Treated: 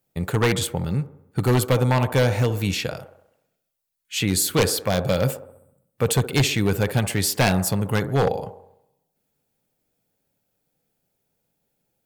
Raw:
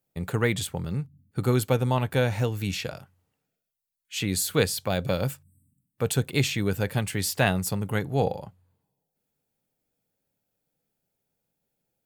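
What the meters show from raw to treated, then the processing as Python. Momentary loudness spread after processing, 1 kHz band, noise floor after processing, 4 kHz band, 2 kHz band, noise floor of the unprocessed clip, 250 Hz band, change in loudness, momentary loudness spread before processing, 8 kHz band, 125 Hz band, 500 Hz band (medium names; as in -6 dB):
8 LU, +5.0 dB, -77 dBFS, +5.5 dB, +3.5 dB, -83 dBFS, +4.5 dB, +4.5 dB, 9 LU, +5.5 dB, +5.0 dB, +4.5 dB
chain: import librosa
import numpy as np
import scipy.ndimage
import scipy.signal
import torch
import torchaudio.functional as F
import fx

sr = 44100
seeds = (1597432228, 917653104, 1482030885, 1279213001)

y = fx.echo_wet_bandpass(x, sr, ms=66, feedback_pct=55, hz=610.0, wet_db=-10.5)
y = 10.0 ** (-16.5 / 20.0) * (np.abs((y / 10.0 ** (-16.5 / 20.0) + 3.0) % 4.0 - 2.0) - 1.0)
y = y * 10.0 ** (5.5 / 20.0)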